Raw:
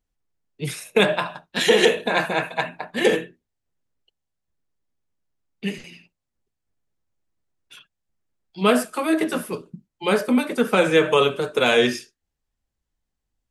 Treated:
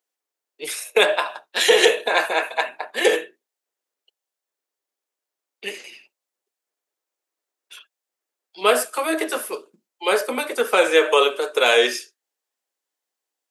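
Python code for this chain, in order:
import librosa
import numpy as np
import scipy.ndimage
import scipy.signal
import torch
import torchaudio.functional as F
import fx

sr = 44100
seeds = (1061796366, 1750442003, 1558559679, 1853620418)

y = scipy.signal.sosfilt(scipy.signal.butter(4, 390.0, 'highpass', fs=sr, output='sos'), x)
y = fx.high_shelf(y, sr, hz=6400.0, db=5.5)
y = y * librosa.db_to_amplitude(2.0)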